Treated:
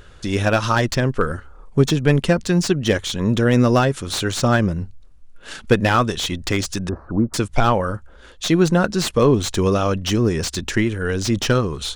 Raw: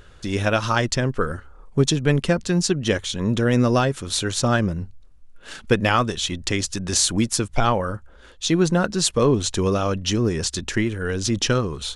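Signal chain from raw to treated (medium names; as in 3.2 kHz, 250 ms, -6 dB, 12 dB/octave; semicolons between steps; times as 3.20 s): 6.89–7.34 s: elliptic low-pass 1.3 kHz, stop band 60 dB; slew-rate limiter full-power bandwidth 290 Hz; trim +3 dB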